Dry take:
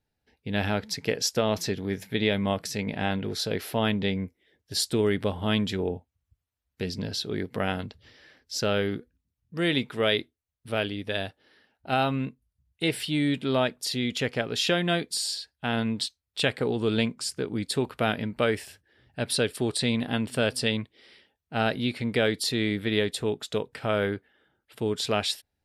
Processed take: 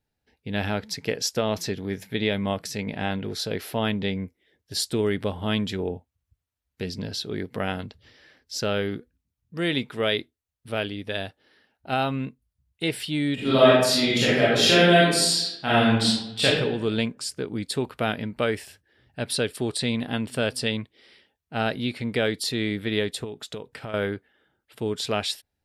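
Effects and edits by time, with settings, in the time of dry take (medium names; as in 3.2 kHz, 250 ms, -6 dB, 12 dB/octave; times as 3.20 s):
13.34–16.45 s: reverb throw, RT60 0.95 s, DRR -9 dB
23.24–23.94 s: compression, threshold -31 dBFS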